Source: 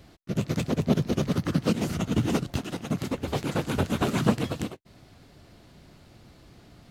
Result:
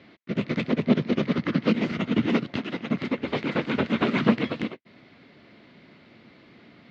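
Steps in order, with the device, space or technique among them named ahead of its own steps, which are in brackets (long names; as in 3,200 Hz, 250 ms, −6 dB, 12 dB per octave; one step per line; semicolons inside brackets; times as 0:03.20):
kitchen radio (loudspeaker in its box 200–4,000 Hz, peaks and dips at 230 Hz +5 dB, 770 Hz −5 dB, 2,100 Hz +8 dB)
level +2.5 dB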